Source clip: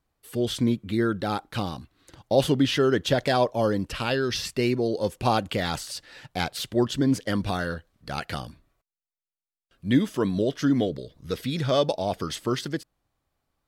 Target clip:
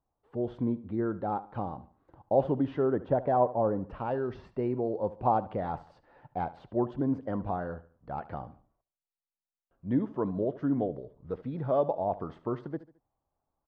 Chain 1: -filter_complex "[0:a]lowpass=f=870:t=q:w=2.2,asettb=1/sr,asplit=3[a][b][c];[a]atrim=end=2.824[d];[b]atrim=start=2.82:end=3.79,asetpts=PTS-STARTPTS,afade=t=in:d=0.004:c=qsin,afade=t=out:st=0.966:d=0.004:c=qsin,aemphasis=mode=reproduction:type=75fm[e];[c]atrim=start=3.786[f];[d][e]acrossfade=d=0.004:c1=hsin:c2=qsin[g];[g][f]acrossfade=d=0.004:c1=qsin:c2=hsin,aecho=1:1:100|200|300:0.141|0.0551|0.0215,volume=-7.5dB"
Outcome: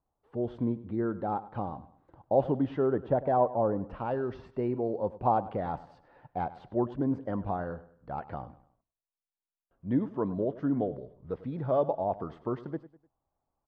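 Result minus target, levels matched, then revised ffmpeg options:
echo 28 ms late
-filter_complex "[0:a]lowpass=f=870:t=q:w=2.2,asettb=1/sr,asplit=3[a][b][c];[a]atrim=end=2.824[d];[b]atrim=start=2.82:end=3.79,asetpts=PTS-STARTPTS,afade=t=in:d=0.004:c=qsin,afade=t=out:st=0.966:d=0.004:c=qsin,aemphasis=mode=reproduction:type=75fm[e];[c]atrim=start=3.786[f];[d][e]acrossfade=d=0.004:c1=hsin:c2=qsin[g];[g][f]acrossfade=d=0.004:c1=qsin:c2=hsin,aecho=1:1:72|144|216:0.141|0.0551|0.0215,volume=-7.5dB"

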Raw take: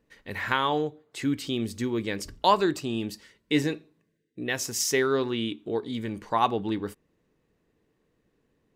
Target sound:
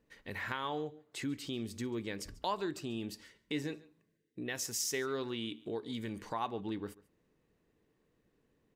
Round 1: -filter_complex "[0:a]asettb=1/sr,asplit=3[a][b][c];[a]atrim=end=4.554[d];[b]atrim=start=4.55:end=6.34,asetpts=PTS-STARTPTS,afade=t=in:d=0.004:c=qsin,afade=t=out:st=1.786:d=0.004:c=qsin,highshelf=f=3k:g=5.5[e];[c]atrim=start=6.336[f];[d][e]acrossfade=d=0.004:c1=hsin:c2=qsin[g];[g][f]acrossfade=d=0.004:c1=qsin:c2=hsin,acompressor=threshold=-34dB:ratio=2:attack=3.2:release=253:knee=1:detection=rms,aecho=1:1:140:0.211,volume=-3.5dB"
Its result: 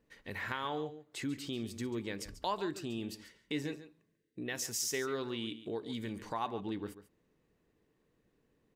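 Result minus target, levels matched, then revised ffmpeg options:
echo-to-direct +8 dB
-filter_complex "[0:a]asettb=1/sr,asplit=3[a][b][c];[a]atrim=end=4.554[d];[b]atrim=start=4.55:end=6.34,asetpts=PTS-STARTPTS,afade=t=in:d=0.004:c=qsin,afade=t=out:st=1.786:d=0.004:c=qsin,highshelf=f=3k:g=5.5[e];[c]atrim=start=6.336[f];[d][e]acrossfade=d=0.004:c1=hsin:c2=qsin[g];[g][f]acrossfade=d=0.004:c1=qsin:c2=hsin,acompressor=threshold=-34dB:ratio=2:attack=3.2:release=253:knee=1:detection=rms,aecho=1:1:140:0.0841,volume=-3.5dB"

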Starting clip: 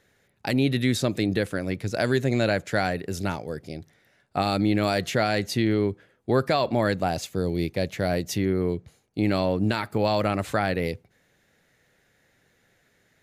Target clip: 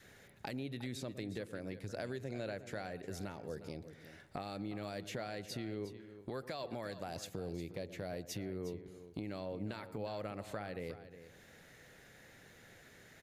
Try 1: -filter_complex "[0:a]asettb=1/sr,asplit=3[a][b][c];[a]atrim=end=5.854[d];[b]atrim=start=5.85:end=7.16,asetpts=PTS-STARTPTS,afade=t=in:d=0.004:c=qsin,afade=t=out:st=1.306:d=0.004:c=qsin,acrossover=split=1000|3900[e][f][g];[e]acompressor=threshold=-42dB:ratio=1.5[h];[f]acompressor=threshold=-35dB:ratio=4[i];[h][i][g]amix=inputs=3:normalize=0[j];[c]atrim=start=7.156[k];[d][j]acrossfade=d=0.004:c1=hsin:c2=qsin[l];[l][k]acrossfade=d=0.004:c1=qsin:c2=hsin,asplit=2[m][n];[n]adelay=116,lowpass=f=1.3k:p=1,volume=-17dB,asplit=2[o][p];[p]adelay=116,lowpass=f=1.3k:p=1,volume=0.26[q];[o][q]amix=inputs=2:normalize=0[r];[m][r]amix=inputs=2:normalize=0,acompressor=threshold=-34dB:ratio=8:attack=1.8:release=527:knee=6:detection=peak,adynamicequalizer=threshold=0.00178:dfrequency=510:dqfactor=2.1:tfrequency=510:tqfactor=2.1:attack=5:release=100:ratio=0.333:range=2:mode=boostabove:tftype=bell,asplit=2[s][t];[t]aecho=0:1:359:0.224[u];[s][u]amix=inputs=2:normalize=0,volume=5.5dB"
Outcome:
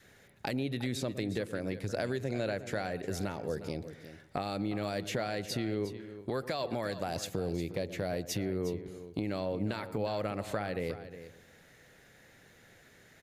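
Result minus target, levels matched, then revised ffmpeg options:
compressor: peak gain reduction -8 dB
-filter_complex "[0:a]asettb=1/sr,asplit=3[a][b][c];[a]atrim=end=5.854[d];[b]atrim=start=5.85:end=7.16,asetpts=PTS-STARTPTS,afade=t=in:d=0.004:c=qsin,afade=t=out:st=1.306:d=0.004:c=qsin,acrossover=split=1000|3900[e][f][g];[e]acompressor=threshold=-42dB:ratio=1.5[h];[f]acompressor=threshold=-35dB:ratio=4[i];[h][i][g]amix=inputs=3:normalize=0[j];[c]atrim=start=7.156[k];[d][j]acrossfade=d=0.004:c1=hsin:c2=qsin[l];[l][k]acrossfade=d=0.004:c1=qsin:c2=hsin,asplit=2[m][n];[n]adelay=116,lowpass=f=1.3k:p=1,volume=-17dB,asplit=2[o][p];[p]adelay=116,lowpass=f=1.3k:p=1,volume=0.26[q];[o][q]amix=inputs=2:normalize=0[r];[m][r]amix=inputs=2:normalize=0,acompressor=threshold=-43dB:ratio=8:attack=1.8:release=527:knee=6:detection=peak,adynamicequalizer=threshold=0.00178:dfrequency=510:dqfactor=2.1:tfrequency=510:tqfactor=2.1:attack=5:release=100:ratio=0.333:range=2:mode=boostabove:tftype=bell,asplit=2[s][t];[t]aecho=0:1:359:0.224[u];[s][u]amix=inputs=2:normalize=0,volume=5.5dB"

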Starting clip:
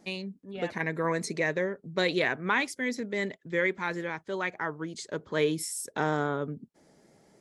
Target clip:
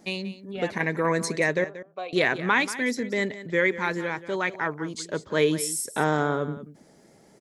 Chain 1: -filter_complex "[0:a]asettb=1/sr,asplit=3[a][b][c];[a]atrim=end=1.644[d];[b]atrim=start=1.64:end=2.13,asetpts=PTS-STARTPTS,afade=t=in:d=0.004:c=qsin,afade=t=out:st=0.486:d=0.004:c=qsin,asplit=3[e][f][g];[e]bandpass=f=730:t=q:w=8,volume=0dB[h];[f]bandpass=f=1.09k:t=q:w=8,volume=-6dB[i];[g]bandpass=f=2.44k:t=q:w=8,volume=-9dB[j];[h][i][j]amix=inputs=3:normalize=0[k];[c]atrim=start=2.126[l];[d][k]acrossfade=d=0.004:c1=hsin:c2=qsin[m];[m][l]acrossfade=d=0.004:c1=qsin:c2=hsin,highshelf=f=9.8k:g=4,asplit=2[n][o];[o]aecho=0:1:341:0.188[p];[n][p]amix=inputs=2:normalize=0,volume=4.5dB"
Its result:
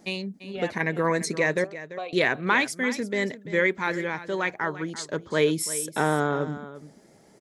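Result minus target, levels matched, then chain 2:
echo 0.158 s late
-filter_complex "[0:a]asettb=1/sr,asplit=3[a][b][c];[a]atrim=end=1.644[d];[b]atrim=start=1.64:end=2.13,asetpts=PTS-STARTPTS,afade=t=in:d=0.004:c=qsin,afade=t=out:st=0.486:d=0.004:c=qsin,asplit=3[e][f][g];[e]bandpass=f=730:t=q:w=8,volume=0dB[h];[f]bandpass=f=1.09k:t=q:w=8,volume=-6dB[i];[g]bandpass=f=2.44k:t=q:w=8,volume=-9dB[j];[h][i][j]amix=inputs=3:normalize=0[k];[c]atrim=start=2.126[l];[d][k]acrossfade=d=0.004:c1=hsin:c2=qsin[m];[m][l]acrossfade=d=0.004:c1=qsin:c2=hsin,highshelf=f=9.8k:g=4,asplit=2[n][o];[o]aecho=0:1:183:0.188[p];[n][p]amix=inputs=2:normalize=0,volume=4.5dB"

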